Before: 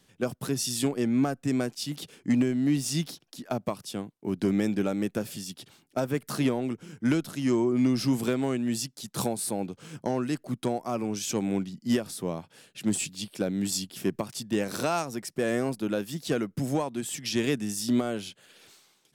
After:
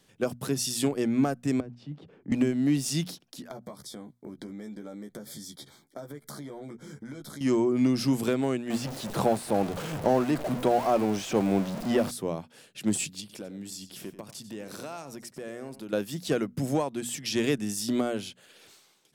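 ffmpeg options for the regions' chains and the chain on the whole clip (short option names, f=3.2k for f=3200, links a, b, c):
-filter_complex "[0:a]asettb=1/sr,asplit=3[a][b][c];[a]atrim=end=1.604[d];[b]atrim=start=1.6:end=2.32,asetpts=PTS-STARTPTS,afade=t=in:d=0.004:c=qsin,afade=t=out:st=0.716:d=0.004:c=qsin,lowpass=1.2k,acrossover=split=190|3000[e][f][g];[f]acompressor=threshold=-49dB:ratio=2.5:attack=3.2:release=140:knee=2.83:detection=peak[h];[e][h][g]amix=inputs=3:normalize=0[i];[c]atrim=start=2.316[j];[d][i]acrossfade=d=0.004:c1=hsin:c2=qsin[k];[k][j]acrossfade=d=0.004:c1=qsin:c2=hsin,asettb=1/sr,asplit=3[l][m][n];[l]atrim=end=3.484[o];[m]atrim=start=3.48:end=7.41,asetpts=PTS-STARTPTS,afade=t=in:d=0.004:c=qsin,afade=t=out:st=3.926:d=0.004:c=qsin,asplit=2[p][q];[q]adelay=14,volume=-5dB[r];[p][r]amix=inputs=2:normalize=0,atrim=end_sample=173313,acompressor=threshold=-38dB:ratio=8:attack=3.2:release=140:knee=1:detection=peak,asuperstop=centerf=2700:order=12:qfactor=3.6[s];[n]atrim=start=7.406[t];[o][s]acrossfade=d=0.004:c1=hsin:c2=qsin[u];[u][t]acrossfade=d=0.004:c1=qsin:c2=hsin,asettb=1/sr,asplit=3[v][w][x];[v]atrim=end=8.704[y];[w]atrim=start=8.7:end=12.11,asetpts=PTS-STARTPTS,afade=t=in:d=0.004:c=qsin,afade=t=out:st=3.406:d=0.004:c=qsin,aeval=exprs='val(0)+0.5*0.0266*sgn(val(0))':c=same,acrossover=split=3300[z][aa];[aa]acompressor=threshold=-41dB:ratio=4:attack=1:release=60[ab];[z][ab]amix=inputs=2:normalize=0,equalizer=f=670:t=o:w=1.1:g=5.5[ac];[x]atrim=start=12.106[ad];[y][ac]acrossfade=d=0.004:c1=hsin:c2=qsin[ae];[ae][ad]acrossfade=d=0.004:c1=qsin:c2=hsin,asettb=1/sr,asplit=3[af][ag][ah];[af]atrim=end=13.204[ai];[ag]atrim=start=13.2:end=15.93,asetpts=PTS-STARTPTS,afade=t=in:d=0.004:c=qsin,afade=t=out:st=2.726:d=0.004:c=qsin,acompressor=threshold=-40dB:ratio=3:attack=3.2:release=140:knee=1:detection=peak,aecho=1:1:93:0.211,atrim=end_sample=120393[aj];[ah]atrim=start=15.926[ak];[ai][aj]acrossfade=d=0.004:c1=hsin:c2=qsin[al];[al][ak]acrossfade=d=0.004:c1=qsin:c2=hsin,equalizer=f=530:w=1.5:g=2,bandreject=f=60:t=h:w=6,bandreject=f=120:t=h:w=6,bandreject=f=180:t=h:w=6,bandreject=f=240:t=h:w=6"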